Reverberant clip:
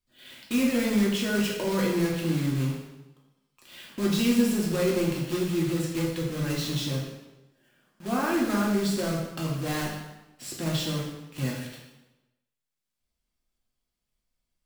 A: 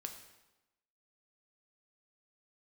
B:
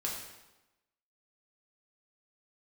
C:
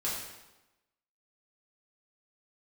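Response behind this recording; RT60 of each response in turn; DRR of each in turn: B; 1.0 s, 1.0 s, 1.0 s; 4.0 dB, -3.5 dB, -8.0 dB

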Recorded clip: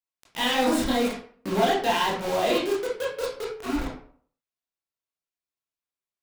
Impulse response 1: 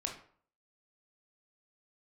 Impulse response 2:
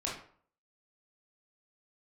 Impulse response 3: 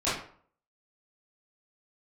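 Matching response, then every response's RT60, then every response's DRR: 2; 0.50 s, 0.50 s, 0.50 s; 1.0 dB, -5.0 dB, -13.0 dB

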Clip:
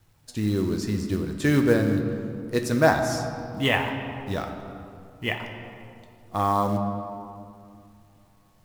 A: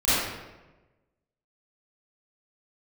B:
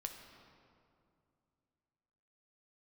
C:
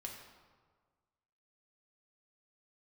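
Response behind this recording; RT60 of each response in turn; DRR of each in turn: B; 1.1 s, 2.5 s, 1.6 s; -15.0 dB, 3.5 dB, -0.5 dB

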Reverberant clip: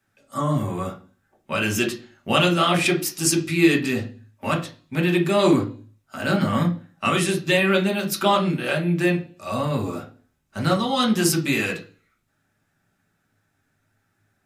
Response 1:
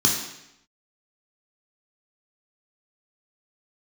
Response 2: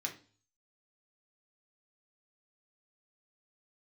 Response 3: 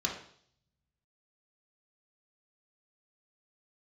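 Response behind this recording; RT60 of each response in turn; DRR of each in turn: 2; 0.80 s, 0.40 s, 0.60 s; -2.0 dB, 0.5 dB, -0.5 dB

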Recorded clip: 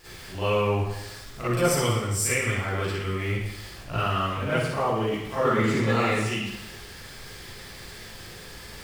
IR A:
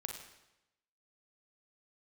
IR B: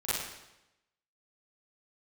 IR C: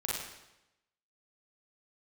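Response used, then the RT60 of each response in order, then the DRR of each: B; 0.90 s, 0.90 s, 0.90 s; 2.5 dB, -13.5 dB, -5.5 dB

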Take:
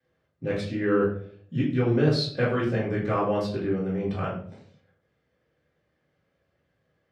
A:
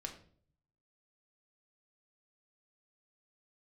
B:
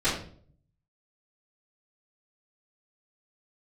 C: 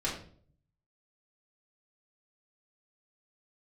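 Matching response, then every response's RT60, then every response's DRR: B; 0.50 s, 0.50 s, 0.50 s; 2.0 dB, -16.5 dB, -7.0 dB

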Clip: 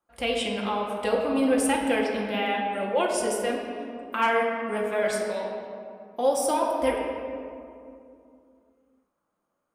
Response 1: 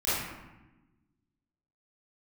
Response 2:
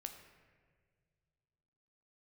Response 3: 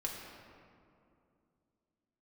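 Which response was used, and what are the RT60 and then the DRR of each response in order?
3; 1.1 s, 1.8 s, 2.5 s; -14.5 dB, 5.0 dB, -2.0 dB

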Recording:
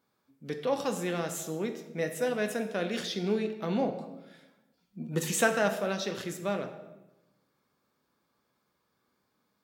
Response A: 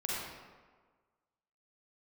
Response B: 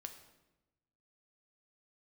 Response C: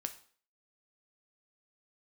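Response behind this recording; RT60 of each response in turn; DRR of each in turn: B; 1.5 s, 1.0 s, 0.50 s; -6.0 dB, 5.5 dB, 7.0 dB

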